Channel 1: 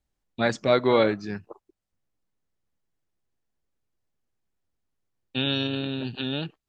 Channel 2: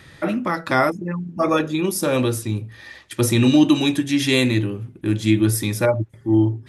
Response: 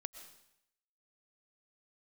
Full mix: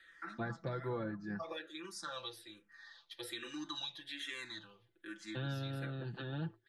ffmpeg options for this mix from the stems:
-filter_complex "[0:a]volume=-8dB[link_01];[1:a]bandpass=frequency=3700:width_type=q:width=2.7:csg=0,asplit=2[link_02][link_03];[link_03]afreqshift=-1.2[link_04];[link_02][link_04]amix=inputs=2:normalize=1,volume=-1dB[link_05];[link_01][link_05]amix=inputs=2:normalize=0,highshelf=frequency=2000:width_type=q:width=3:gain=-7,acrossover=split=190[link_06][link_07];[link_07]acompressor=threshold=-41dB:ratio=8[link_08];[link_06][link_08]amix=inputs=2:normalize=0,aecho=1:1:5.9:0.75"

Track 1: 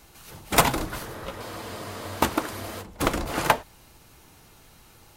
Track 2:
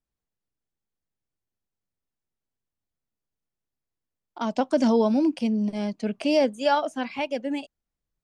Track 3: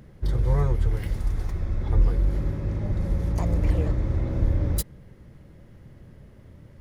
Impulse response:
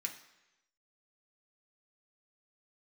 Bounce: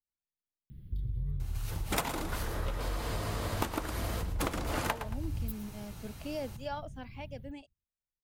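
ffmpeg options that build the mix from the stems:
-filter_complex "[0:a]adelay=1400,volume=1dB,asplit=2[link_01][link_02];[link_02]volume=-12dB[link_03];[1:a]volume=-16.5dB[link_04];[2:a]firequalizer=gain_entry='entry(110,0);entry(620,-30);entry(3400,-7);entry(6400,-27);entry(13000,2)':delay=0.05:min_phase=1,acompressor=threshold=-36dB:ratio=2.5,adelay=700,volume=1.5dB,asplit=2[link_05][link_06];[link_06]volume=-17.5dB[link_07];[link_03][link_07]amix=inputs=2:normalize=0,aecho=0:1:112|224|336:1|0.17|0.0289[link_08];[link_01][link_04][link_05][link_08]amix=inputs=4:normalize=0,acompressor=threshold=-30dB:ratio=6"

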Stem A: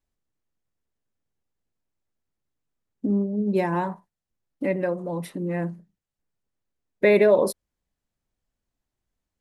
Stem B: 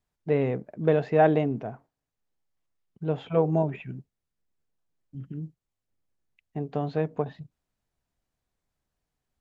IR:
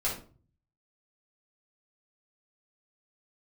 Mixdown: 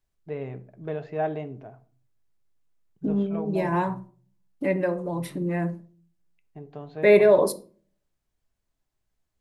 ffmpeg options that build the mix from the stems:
-filter_complex "[0:a]deesser=0.4,volume=0dB,asplit=2[link_01][link_02];[link_02]volume=-16dB[link_03];[1:a]volume=-10dB,asplit=3[link_04][link_05][link_06];[link_05]volume=-16dB[link_07];[link_06]apad=whole_len=414753[link_08];[link_01][link_08]sidechaincompress=threshold=-34dB:ratio=8:attack=16:release=202[link_09];[2:a]atrim=start_sample=2205[link_10];[link_03][link_07]amix=inputs=2:normalize=0[link_11];[link_11][link_10]afir=irnorm=-1:irlink=0[link_12];[link_09][link_04][link_12]amix=inputs=3:normalize=0,equalizer=frequency=230:width=6.4:gain=-6.5,bandreject=frequency=500:width=12"

